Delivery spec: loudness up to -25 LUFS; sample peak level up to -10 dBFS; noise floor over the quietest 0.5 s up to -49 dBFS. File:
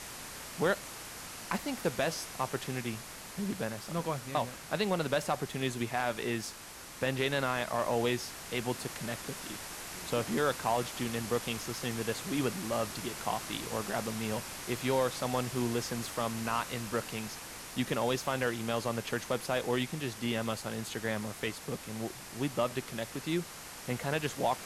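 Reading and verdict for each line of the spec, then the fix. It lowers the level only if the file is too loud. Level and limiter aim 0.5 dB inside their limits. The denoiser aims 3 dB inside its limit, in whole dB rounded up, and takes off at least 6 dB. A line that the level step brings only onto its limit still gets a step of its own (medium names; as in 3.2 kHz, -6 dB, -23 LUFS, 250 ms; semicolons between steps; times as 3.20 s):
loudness -34.5 LUFS: pass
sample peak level -18.0 dBFS: pass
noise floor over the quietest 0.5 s -48 dBFS: fail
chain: noise reduction 6 dB, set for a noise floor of -48 dBFS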